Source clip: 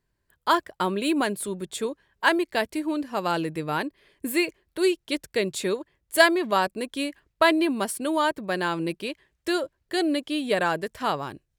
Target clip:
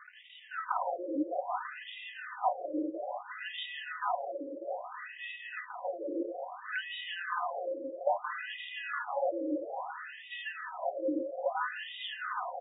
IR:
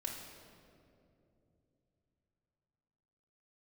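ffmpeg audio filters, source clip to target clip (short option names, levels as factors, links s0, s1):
-filter_complex "[0:a]aeval=exprs='val(0)+0.5*0.0398*sgn(val(0))':c=same,tremolo=f=120:d=0.462,acrusher=samples=18:mix=1:aa=0.000001,asetrate=40517,aresample=44100,asplit=2[s0][s1];[s1]aecho=0:1:166.2|218.7|271.1:0.447|0.282|0.282[s2];[s0][s2]amix=inputs=2:normalize=0,aeval=exprs='(mod(2*val(0)+1,2)-1)/2':c=same,aecho=1:1:4:0.81,acompressor=threshold=0.112:ratio=6,superequalizer=7b=0.282:8b=1.41,adynamicsmooth=sensitivity=2:basefreq=5300,asplit=2[s3][s4];[s4]aecho=0:1:334|668|1002|1336|1670|2004:0.398|0.191|0.0917|0.044|0.0211|0.0101[s5];[s3][s5]amix=inputs=2:normalize=0,afftfilt=real='re*between(b*sr/1024,410*pow(2700/410,0.5+0.5*sin(2*PI*0.6*pts/sr))/1.41,410*pow(2700/410,0.5+0.5*sin(2*PI*0.6*pts/sr))*1.41)':imag='im*between(b*sr/1024,410*pow(2700/410,0.5+0.5*sin(2*PI*0.6*pts/sr))/1.41,410*pow(2700/410,0.5+0.5*sin(2*PI*0.6*pts/sr))*1.41)':win_size=1024:overlap=0.75,volume=0.631"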